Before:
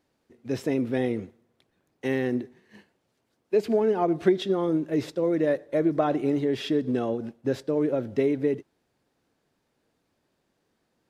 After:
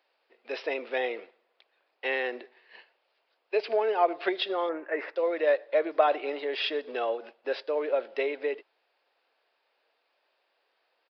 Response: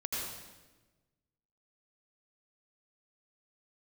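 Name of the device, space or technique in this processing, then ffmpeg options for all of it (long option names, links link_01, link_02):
musical greeting card: -filter_complex "[0:a]aresample=11025,aresample=44100,highpass=frequency=530:width=0.5412,highpass=frequency=530:width=1.3066,equalizer=frequency=2600:width_type=o:width=0.39:gain=5.5,asettb=1/sr,asplit=3[link_01][link_02][link_03];[link_01]atrim=end=4.694[link_04];[link_02]atrim=start=4.69:end=5.16,asetpts=PTS-STARTPTS,afade=type=in:duration=0.004:curve=qsin,afade=type=out:start_time=0.466:duration=0.004:curve=qsin,highshelf=frequency=2600:width_type=q:width=3:gain=-13[link_05];[link_03]atrim=start=5.156[link_06];[link_04][link_05]acrossfade=duration=0.004:curve1=hsin:curve2=qsin[link_07];[link_07][link_06]acrossfade=duration=0.004:curve1=qsin:curve2=hsin,volume=3.5dB"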